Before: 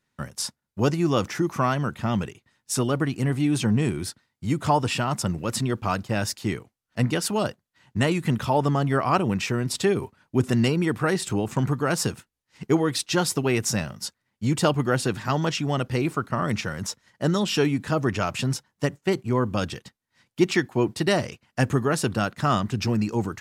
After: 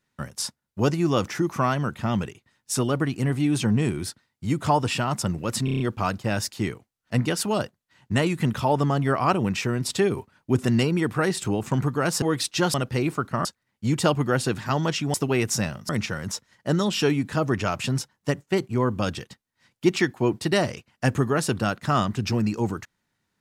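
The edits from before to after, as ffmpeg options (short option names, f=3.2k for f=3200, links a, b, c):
-filter_complex "[0:a]asplit=11[a][b][c][d][e][f][g][h][i][j][k];[a]atrim=end=5.682[l];[b]atrim=start=5.648:end=5.682[m];[c]atrim=start=5.648:end=5.682[n];[d]atrim=start=5.648:end=5.682[o];[e]atrim=start=5.648:end=5.682[p];[f]atrim=start=5.648:end=12.072[q];[g]atrim=start=12.768:end=13.292[r];[h]atrim=start=15.728:end=16.442[s];[i]atrim=start=14.038:end=15.732[t];[j]atrim=start=13.288:end=14.042[u];[k]atrim=start=16.438[v];[l][m]acrossfade=d=0.004:c1=hsin:c2=hsin[w];[w][n]acrossfade=d=0.004:c1=hsin:c2=hsin[x];[x][o]acrossfade=d=0.004:c1=hsin:c2=hsin[y];[y][p]acrossfade=d=0.004:c1=hsin:c2=hsin[z];[z][q]acrossfade=d=0.004:c1=hsin:c2=hsin[aa];[aa][r]acrossfade=d=0.004:c1=hsin:c2=hsin[ab];[ab][s]acrossfade=d=0.004:c1=hsin:c2=hsin[ac];[ac][t]acrossfade=d=0.004:c1=hsin:c2=hsin[ad];[ad][u]acrossfade=d=0.004:c1=hsin:c2=hsin[ae];[ae][v]acrossfade=d=0.004:c1=hsin:c2=hsin"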